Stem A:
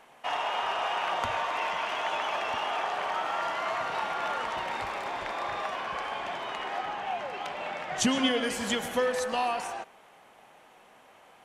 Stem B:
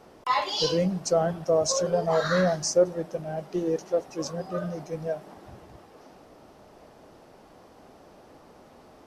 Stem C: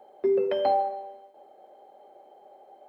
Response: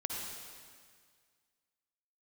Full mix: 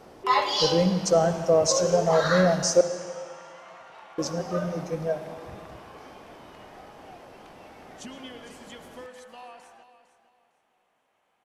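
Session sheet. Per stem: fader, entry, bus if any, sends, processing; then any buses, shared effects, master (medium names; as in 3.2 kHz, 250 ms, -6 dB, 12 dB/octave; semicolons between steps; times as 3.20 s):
-16.5 dB, 0.00 s, no send, echo send -12.5 dB, none
0.0 dB, 0.00 s, muted 2.81–4.18 s, send -7.5 dB, no echo send, none
-12.5 dB, 0.00 s, no send, no echo send, none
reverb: on, RT60 1.9 s, pre-delay 47 ms
echo: feedback delay 455 ms, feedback 27%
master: none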